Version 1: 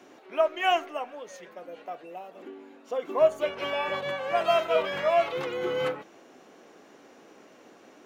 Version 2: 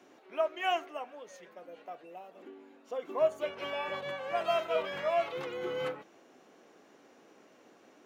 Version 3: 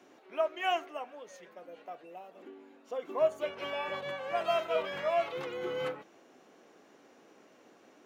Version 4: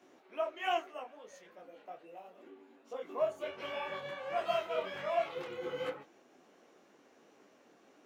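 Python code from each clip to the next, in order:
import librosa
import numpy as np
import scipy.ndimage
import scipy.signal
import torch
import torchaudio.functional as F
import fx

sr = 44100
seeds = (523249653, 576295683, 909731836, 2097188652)

y1 = scipy.signal.sosfilt(scipy.signal.butter(2, 50.0, 'highpass', fs=sr, output='sos'), x)
y1 = F.gain(torch.from_numpy(y1), -6.5).numpy()
y2 = y1
y3 = fx.detune_double(y2, sr, cents=47)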